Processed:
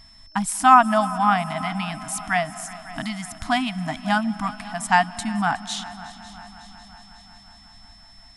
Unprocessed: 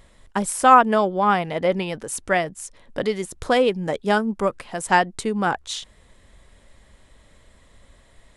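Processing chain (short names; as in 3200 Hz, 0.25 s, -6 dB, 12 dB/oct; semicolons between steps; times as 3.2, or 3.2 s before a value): multi-head echo 0.183 s, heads second and third, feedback 60%, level -19 dB; on a send at -19 dB: reverb RT60 2.9 s, pre-delay 0.12 s; on the sum: FFT band-reject 310–630 Hz; whine 5300 Hz -49 dBFS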